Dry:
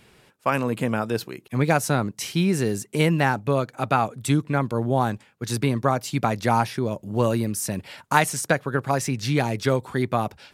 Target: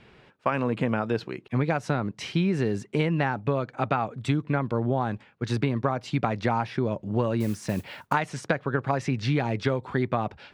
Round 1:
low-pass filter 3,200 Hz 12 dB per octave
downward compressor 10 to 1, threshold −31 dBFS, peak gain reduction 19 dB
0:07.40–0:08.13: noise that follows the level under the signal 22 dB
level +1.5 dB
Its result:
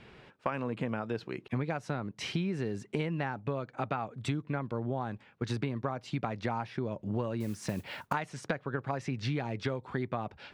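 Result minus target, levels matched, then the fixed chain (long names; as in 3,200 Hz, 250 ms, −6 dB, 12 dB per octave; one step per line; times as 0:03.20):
downward compressor: peak gain reduction +8.5 dB
low-pass filter 3,200 Hz 12 dB per octave
downward compressor 10 to 1, threshold −21.5 dBFS, peak gain reduction 10.5 dB
0:07.40–0:08.13: noise that follows the level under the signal 22 dB
level +1.5 dB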